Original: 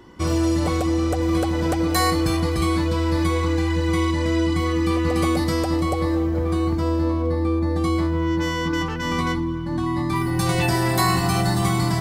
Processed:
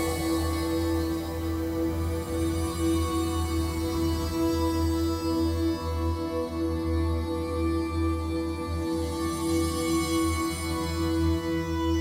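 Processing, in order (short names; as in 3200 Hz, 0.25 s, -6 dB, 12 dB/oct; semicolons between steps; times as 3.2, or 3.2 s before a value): pre-emphasis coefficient 0.8; Paulstretch 5.3×, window 0.50 s, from 5.99; gain +7.5 dB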